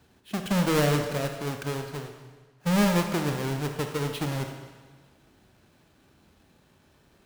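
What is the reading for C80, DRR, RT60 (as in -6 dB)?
8.0 dB, 4.5 dB, 1.4 s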